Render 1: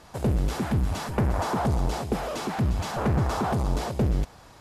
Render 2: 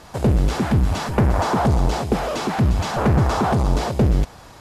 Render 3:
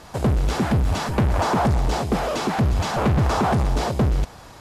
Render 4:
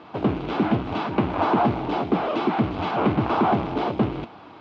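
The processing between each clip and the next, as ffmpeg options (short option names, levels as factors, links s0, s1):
-filter_complex "[0:a]acrossover=split=8000[s0][s1];[s1]acompressor=threshold=0.002:ratio=4:attack=1:release=60[s2];[s0][s2]amix=inputs=2:normalize=0,volume=2.24"
-af "asoftclip=type=hard:threshold=0.178"
-af "flanger=delay=8.4:depth=3:regen=74:speed=1.2:shape=sinusoidal,acrusher=bits=4:mode=log:mix=0:aa=0.000001,highpass=190,equalizer=f=310:t=q:w=4:g=7,equalizer=f=530:t=q:w=4:g=-5,equalizer=f=1800:t=q:w=4:g=-9,lowpass=f=3100:w=0.5412,lowpass=f=3100:w=1.3066,volume=1.88"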